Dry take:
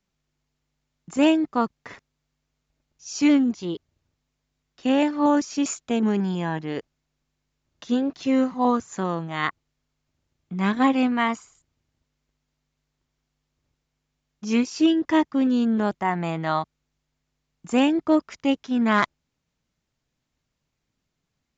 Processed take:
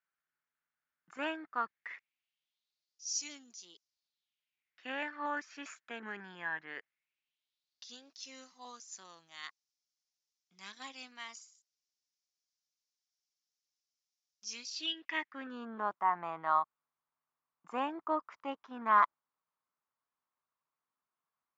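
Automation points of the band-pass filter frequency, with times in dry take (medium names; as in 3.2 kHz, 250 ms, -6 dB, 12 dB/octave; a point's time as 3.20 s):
band-pass filter, Q 3.6
1.53 s 1.5 kHz
3.19 s 6.1 kHz
3.74 s 6.1 kHz
4.91 s 1.7 kHz
6.73 s 1.7 kHz
7.96 s 5.5 kHz
14.55 s 5.5 kHz
15.66 s 1.1 kHz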